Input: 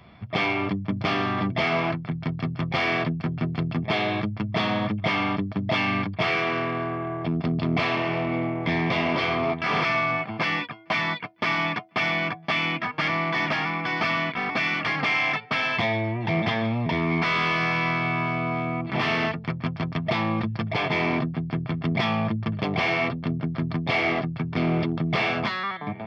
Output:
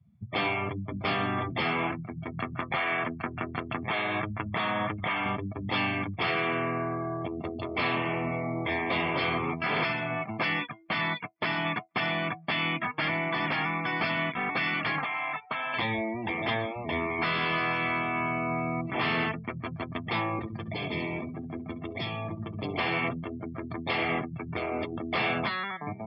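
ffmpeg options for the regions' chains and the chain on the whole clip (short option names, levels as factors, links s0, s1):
-filter_complex "[0:a]asettb=1/sr,asplit=3[s0][s1][s2];[s0]atrim=end=2.384[s3];[s1]atrim=start=2.38:end=5.26,asetpts=PTS-STARTPTS,afade=t=in:d=0.004:c=qsin,afade=t=out:st=2.876:d=0.004:c=qsin,equalizer=f=1400:t=o:w=2.5:g=10.5,acompressor=threshold=0.0794:ratio=8:attack=3.2:release=140:knee=1:detection=peak[s4];[s2]atrim=start=5.256[s5];[s3][s4]acrossfade=d=0.004:c1=hsin:c2=qsin[s6];[s6][s5]acrossfade=d=0.004:c1=qsin:c2=hsin,asettb=1/sr,asplit=3[s7][s8][s9];[s7]atrim=end=14.984[s10];[s8]atrim=start=14.98:end=15.74,asetpts=PTS-STARTPTS,afade=t=in:d=0.004:c=qsin,afade=t=out:st=0.756:d=0.004:c=qsin,lowpass=5200,equalizer=f=1000:t=o:w=1.5:g=9.5,acrossover=split=1200|2600[s11][s12][s13];[s11]acompressor=threshold=0.02:ratio=4[s14];[s12]acompressor=threshold=0.0158:ratio=4[s15];[s13]acompressor=threshold=0.0112:ratio=4[s16];[s14][s15][s16]amix=inputs=3:normalize=0[s17];[s9]atrim=start=15.736[s18];[s10][s17]acrossfade=d=0.004:c1=hsin:c2=qsin[s19];[s19][s18]acrossfade=d=0.004:c1=qsin:c2=hsin,asettb=1/sr,asplit=3[s20][s21][s22];[s20]atrim=end=20.394[s23];[s21]atrim=start=20.39:end=22.78,asetpts=PTS-STARTPTS,afade=t=in:d=0.004:c=qsin,afade=t=out:st=2.386:d=0.004:c=qsin,acrossover=split=390|3000[s24][s25][s26];[s25]acompressor=threshold=0.02:ratio=10:attack=3.2:release=140:knee=2.83:detection=peak[s27];[s24][s27][s26]amix=inputs=3:normalize=0,aecho=1:1:68|136|204|272:0.376|0.135|0.0487|0.0175,atrim=end_sample=105399[s28];[s22]atrim=start=22.776[s29];[s23][s28]acrossfade=d=0.004:c1=hsin:c2=qsin[s30];[s30][s29]acrossfade=d=0.004:c1=qsin:c2=hsin,afftfilt=real='re*lt(hypot(re,im),0.316)':imag='im*lt(hypot(re,im),0.316)':win_size=1024:overlap=0.75,afftdn=nr=32:nf=-37,volume=0.75"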